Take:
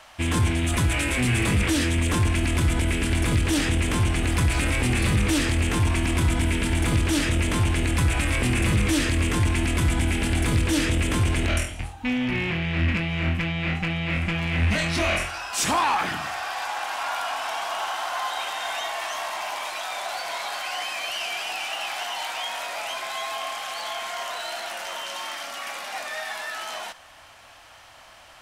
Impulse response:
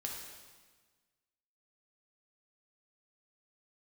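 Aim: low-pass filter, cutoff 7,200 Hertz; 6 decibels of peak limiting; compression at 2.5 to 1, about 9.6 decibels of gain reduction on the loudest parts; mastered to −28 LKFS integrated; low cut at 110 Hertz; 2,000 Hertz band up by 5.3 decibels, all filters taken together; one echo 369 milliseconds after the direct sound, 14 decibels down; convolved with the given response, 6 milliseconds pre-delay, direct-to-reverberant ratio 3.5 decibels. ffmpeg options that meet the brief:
-filter_complex "[0:a]highpass=110,lowpass=7200,equalizer=frequency=2000:width_type=o:gain=6.5,acompressor=threshold=-33dB:ratio=2.5,alimiter=limit=-22.5dB:level=0:latency=1,aecho=1:1:369:0.2,asplit=2[link_01][link_02];[1:a]atrim=start_sample=2205,adelay=6[link_03];[link_02][link_03]afir=irnorm=-1:irlink=0,volume=-3.5dB[link_04];[link_01][link_04]amix=inputs=2:normalize=0,volume=2.5dB"

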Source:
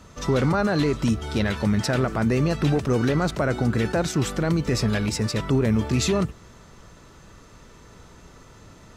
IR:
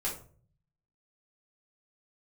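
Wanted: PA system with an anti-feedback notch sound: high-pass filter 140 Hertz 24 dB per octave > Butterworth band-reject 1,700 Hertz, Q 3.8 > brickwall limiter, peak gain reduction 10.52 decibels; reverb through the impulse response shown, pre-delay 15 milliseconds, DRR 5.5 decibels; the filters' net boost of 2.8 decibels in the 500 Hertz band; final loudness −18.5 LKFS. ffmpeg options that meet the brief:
-filter_complex "[0:a]equalizer=frequency=500:width_type=o:gain=3.5,asplit=2[link_01][link_02];[1:a]atrim=start_sample=2205,adelay=15[link_03];[link_02][link_03]afir=irnorm=-1:irlink=0,volume=-9.5dB[link_04];[link_01][link_04]amix=inputs=2:normalize=0,highpass=frequency=140:width=0.5412,highpass=frequency=140:width=1.3066,asuperstop=centerf=1700:order=8:qfactor=3.8,volume=8.5dB,alimiter=limit=-10dB:level=0:latency=1"

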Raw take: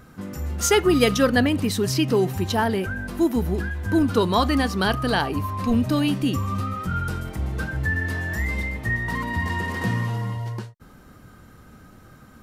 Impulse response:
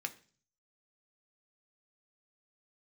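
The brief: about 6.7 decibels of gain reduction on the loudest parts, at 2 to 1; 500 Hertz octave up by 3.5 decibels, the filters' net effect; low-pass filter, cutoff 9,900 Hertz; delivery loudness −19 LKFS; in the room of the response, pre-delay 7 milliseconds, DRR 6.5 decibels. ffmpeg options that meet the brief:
-filter_complex "[0:a]lowpass=9900,equalizer=frequency=500:width_type=o:gain=4.5,acompressor=threshold=-23dB:ratio=2,asplit=2[link_01][link_02];[1:a]atrim=start_sample=2205,adelay=7[link_03];[link_02][link_03]afir=irnorm=-1:irlink=0,volume=-7dB[link_04];[link_01][link_04]amix=inputs=2:normalize=0,volume=6dB"

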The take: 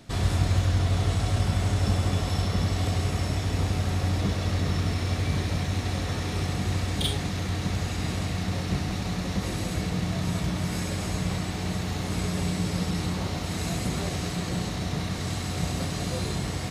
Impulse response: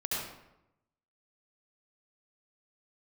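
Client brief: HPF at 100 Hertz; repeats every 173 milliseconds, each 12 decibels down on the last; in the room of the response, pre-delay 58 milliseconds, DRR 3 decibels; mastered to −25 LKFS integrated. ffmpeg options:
-filter_complex "[0:a]highpass=100,aecho=1:1:173|346|519:0.251|0.0628|0.0157,asplit=2[link_01][link_02];[1:a]atrim=start_sample=2205,adelay=58[link_03];[link_02][link_03]afir=irnorm=-1:irlink=0,volume=-8.5dB[link_04];[link_01][link_04]amix=inputs=2:normalize=0,volume=3dB"

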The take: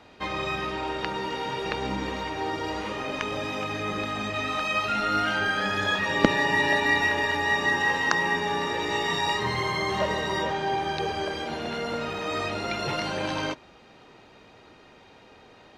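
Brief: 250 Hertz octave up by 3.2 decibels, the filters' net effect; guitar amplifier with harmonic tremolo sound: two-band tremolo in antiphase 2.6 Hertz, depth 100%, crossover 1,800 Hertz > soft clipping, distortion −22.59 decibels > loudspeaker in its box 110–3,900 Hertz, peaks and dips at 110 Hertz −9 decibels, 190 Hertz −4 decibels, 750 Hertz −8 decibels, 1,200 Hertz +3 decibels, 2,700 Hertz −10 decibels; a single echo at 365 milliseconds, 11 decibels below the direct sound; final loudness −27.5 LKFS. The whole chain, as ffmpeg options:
ffmpeg -i in.wav -filter_complex "[0:a]equalizer=frequency=250:width_type=o:gain=6,aecho=1:1:365:0.282,acrossover=split=1800[link_01][link_02];[link_01]aeval=exprs='val(0)*(1-1/2+1/2*cos(2*PI*2.6*n/s))':channel_layout=same[link_03];[link_02]aeval=exprs='val(0)*(1-1/2-1/2*cos(2*PI*2.6*n/s))':channel_layout=same[link_04];[link_03][link_04]amix=inputs=2:normalize=0,asoftclip=threshold=-11.5dB,highpass=110,equalizer=frequency=110:width_type=q:width=4:gain=-9,equalizer=frequency=190:width_type=q:width=4:gain=-4,equalizer=frequency=750:width_type=q:width=4:gain=-8,equalizer=frequency=1200:width_type=q:width=4:gain=3,equalizer=frequency=2700:width_type=q:width=4:gain=-10,lowpass=frequency=3900:width=0.5412,lowpass=frequency=3900:width=1.3066,volume=4.5dB" out.wav

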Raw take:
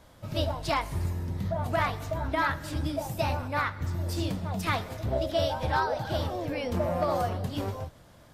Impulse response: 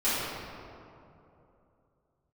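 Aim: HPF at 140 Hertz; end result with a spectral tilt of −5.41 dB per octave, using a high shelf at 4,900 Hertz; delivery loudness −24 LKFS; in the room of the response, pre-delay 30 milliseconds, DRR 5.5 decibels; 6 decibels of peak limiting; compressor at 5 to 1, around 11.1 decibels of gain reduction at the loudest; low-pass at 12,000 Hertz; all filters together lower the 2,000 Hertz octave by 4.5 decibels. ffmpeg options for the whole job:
-filter_complex "[0:a]highpass=140,lowpass=12000,equalizer=frequency=2000:width_type=o:gain=-5.5,highshelf=frequency=4900:gain=-4,acompressor=threshold=-37dB:ratio=5,alimiter=level_in=8dB:limit=-24dB:level=0:latency=1,volume=-8dB,asplit=2[link_01][link_02];[1:a]atrim=start_sample=2205,adelay=30[link_03];[link_02][link_03]afir=irnorm=-1:irlink=0,volume=-18.5dB[link_04];[link_01][link_04]amix=inputs=2:normalize=0,volume=16.5dB"

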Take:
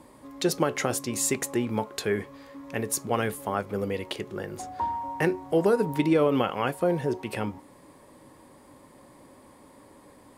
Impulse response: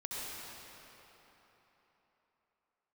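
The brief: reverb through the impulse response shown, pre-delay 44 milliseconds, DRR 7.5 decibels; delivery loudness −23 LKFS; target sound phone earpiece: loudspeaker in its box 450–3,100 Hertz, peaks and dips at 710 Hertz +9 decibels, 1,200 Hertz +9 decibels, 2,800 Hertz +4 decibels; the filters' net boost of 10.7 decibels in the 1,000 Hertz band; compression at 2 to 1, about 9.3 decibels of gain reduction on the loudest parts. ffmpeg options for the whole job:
-filter_complex "[0:a]equalizer=frequency=1000:width_type=o:gain=6.5,acompressor=threshold=-34dB:ratio=2,asplit=2[link_01][link_02];[1:a]atrim=start_sample=2205,adelay=44[link_03];[link_02][link_03]afir=irnorm=-1:irlink=0,volume=-10dB[link_04];[link_01][link_04]amix=inputs=2:normalize=0,highpass=450,equalizer=frequency=710:width_type=q:width=4:gain=9,equalizer=frequency=1200:width_type=q:width=4:gain=9,equalizer=frequency=2800:width_type=q:width=4:gain=4,lowpass=frequency=3100:width=0.5412,lowpass=frequency=3100:width=1.3066,volume=8.5dB"

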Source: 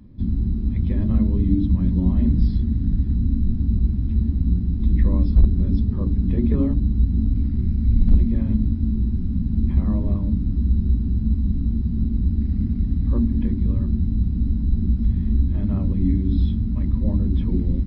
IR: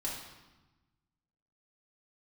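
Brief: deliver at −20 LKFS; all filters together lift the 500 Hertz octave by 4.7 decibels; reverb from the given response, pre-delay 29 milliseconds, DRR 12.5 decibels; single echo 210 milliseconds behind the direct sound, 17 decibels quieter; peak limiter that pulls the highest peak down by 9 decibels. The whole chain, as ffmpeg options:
-filter_complex "[0:a]equalizer=frequency=500:width_type=o:gain=6.5,alimiter=limit=-14.5dB:level=0:latency=1,aecho=1:1:210:0.141,asplit=2[link_01][link_02];[1:a]atrim=start_sample=2205,adelay=29[link_03];[link_02][link_03]afir=irnorm=-1:irlink=0,volume=-14.5dB[link_04];[link_01][link_04]amix=inputs=2:normalize=0,volume=3.5dB"

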